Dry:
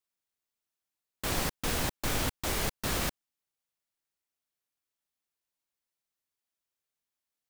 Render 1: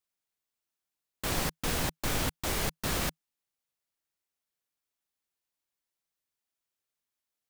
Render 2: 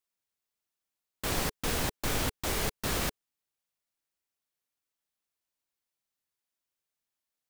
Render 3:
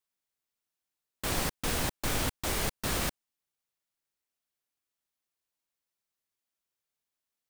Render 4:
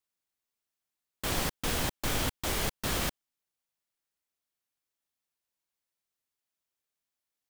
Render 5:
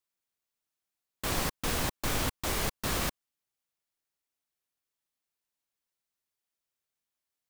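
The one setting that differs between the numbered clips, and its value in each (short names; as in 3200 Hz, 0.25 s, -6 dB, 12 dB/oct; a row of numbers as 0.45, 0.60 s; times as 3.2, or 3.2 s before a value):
dynamic EQ, frequency: 160, 430, 8900, 3200, 1100 Hz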